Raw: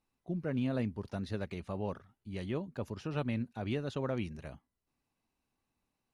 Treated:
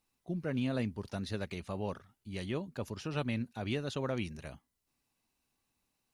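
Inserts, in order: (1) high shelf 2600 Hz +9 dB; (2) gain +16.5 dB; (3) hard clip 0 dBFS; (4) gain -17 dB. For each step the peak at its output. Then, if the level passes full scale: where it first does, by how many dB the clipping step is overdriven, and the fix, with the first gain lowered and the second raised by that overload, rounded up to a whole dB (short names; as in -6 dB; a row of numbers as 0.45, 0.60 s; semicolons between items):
-21.0, -4.5, -4.5, -21.5 dBFS; no overload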